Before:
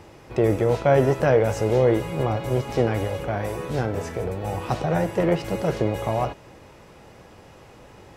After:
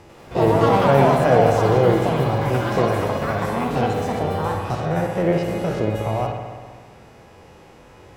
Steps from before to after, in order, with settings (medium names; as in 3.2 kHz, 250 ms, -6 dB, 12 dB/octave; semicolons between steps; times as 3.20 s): spectrogram pixelated in time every 50 ms; ever faster or slower copies 96 ms, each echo +6 st, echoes 2; feedback echo behind a low-pass 65 ms, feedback 76%, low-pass 3.2 kHz, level -7 dB; trim +1 dB